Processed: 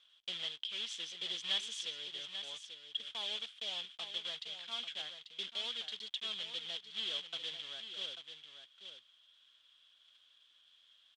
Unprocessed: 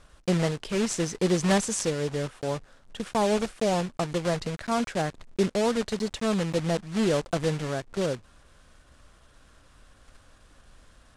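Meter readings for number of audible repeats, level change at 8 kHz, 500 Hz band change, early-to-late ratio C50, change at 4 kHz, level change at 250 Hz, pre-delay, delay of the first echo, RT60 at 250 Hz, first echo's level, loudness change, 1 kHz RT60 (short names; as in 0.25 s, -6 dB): 1, -17.5 dB, -29.0 dB, none, +2.0 dB, -36.0 dB, none, 0.84 s, none, -9.0 dB, -12.0 dB, none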